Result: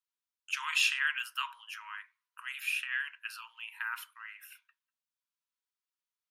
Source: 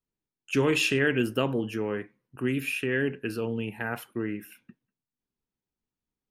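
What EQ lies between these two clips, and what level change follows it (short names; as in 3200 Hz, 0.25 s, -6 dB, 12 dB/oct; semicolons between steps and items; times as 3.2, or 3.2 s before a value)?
rippled Chebyshev high-pass 950 Hz, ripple 3 dB; 0.0 dB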